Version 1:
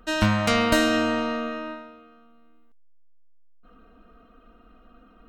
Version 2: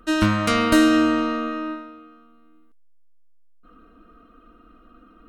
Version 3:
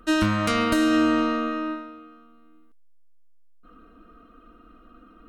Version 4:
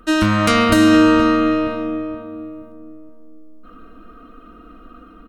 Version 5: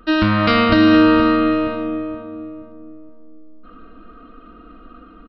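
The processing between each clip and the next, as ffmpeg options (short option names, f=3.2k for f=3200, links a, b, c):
-af "equalizer=f=315:t=o:w=0.33:g=10,equalizer=f=800:t=o:w=0.33:g=-8,equalizer=f=1.25k:t=o:w=0.33:g=6,equalizer=f=10k:t=o:w=0.33:g=6"
-af "alimiter=limit=-11dB:level=0:latency=1:release=248"
-filter_complex "[0:a]dynaudnorm=f=120:g=5:m=4dB,asplit=2[a][b];[b]adelay=473,lowpass=f=880:p=1,volume=-6dB,asplit=2[c][d];[d]adelay=473,lowpass=f=880:p=1,volume=0.44,asplit=2[e][f];[f]adelay=473,lowpass=f=880:p=1,volume=0.44,asplit=2[g][h];[h]adelay=473,lowpass=f=880:p=1,volume=0.44,asplit=2[i][j];[j]adelay=473,lowpass=f=880:p=1,volume=0.44[k];[c][e][g][i][k]amix=inputs=5:normalize=0[l];[a][l]amix=inputs=2:normalize=0,volume=4.5dB"
-af "aresample=11025,aresample=44100"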